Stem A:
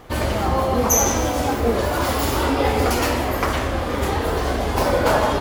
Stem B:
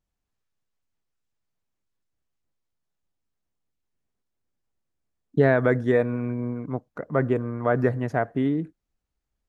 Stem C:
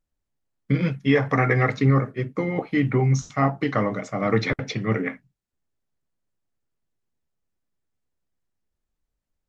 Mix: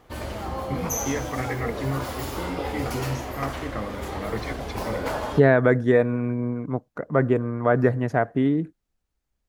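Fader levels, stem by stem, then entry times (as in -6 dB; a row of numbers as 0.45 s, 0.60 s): -11.0 dB, +2.5 dB, -10.0 dB; 0.00 s, 0.00 s, 0.00 s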